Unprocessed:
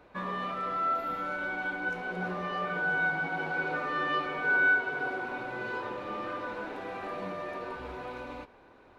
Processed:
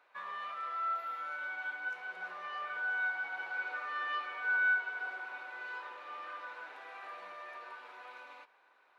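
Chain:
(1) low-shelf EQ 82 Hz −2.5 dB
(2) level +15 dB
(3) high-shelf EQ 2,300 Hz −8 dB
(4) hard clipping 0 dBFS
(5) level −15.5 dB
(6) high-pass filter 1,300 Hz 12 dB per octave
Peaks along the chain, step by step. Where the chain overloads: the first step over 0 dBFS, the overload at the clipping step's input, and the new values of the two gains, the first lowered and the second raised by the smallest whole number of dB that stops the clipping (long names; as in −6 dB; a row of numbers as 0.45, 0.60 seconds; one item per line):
−16.5, −1.5, −3.5, −3.5, −19.0, −22.0 dBFS
no step passes full scale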